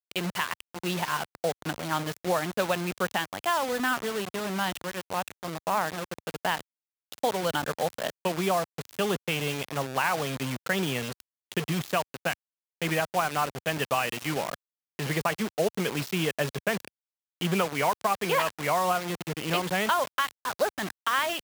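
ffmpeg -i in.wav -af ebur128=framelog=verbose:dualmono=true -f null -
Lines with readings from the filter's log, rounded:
Integrated loudness:
  I:         -26.1 LUFS
  Threshold: -36.3 LUFS
Loudness range:
  LRA:         3.3 LU
  Threshold: -46.4 LUFS
  LRA low:   -27.7 LUFS
  LRA high:  -24.4 LUFS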